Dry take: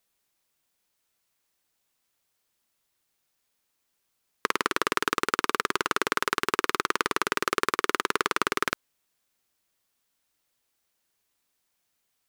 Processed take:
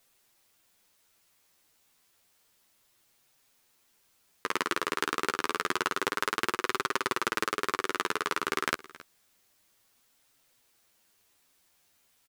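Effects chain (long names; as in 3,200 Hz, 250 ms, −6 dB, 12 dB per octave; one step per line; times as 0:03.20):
compressor whose output falls as the input rises −32 dBFS, ratio −1
flanger 0.29 Hz, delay 7.3 ms, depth 5.8 ms, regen +5%
on a send: single-tap delay 271 ms −19.5 dB
on the sum: level +5.5 dB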